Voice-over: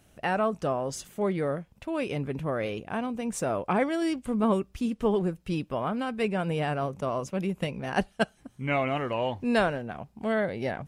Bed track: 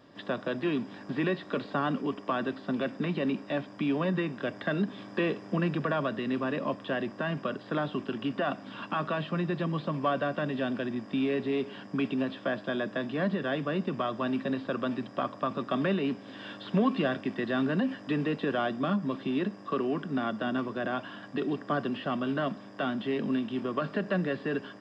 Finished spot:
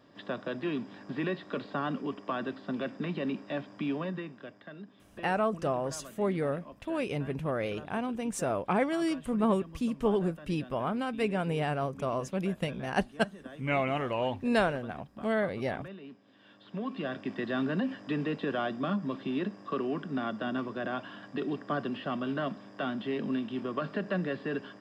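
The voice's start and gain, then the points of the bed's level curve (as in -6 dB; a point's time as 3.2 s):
5.00 s, -2.0 dB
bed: 3.89 s -3.5 dB
4.74 s -17.5 dB
16.4 s -17.5 dB
17.33 s -2.5 dB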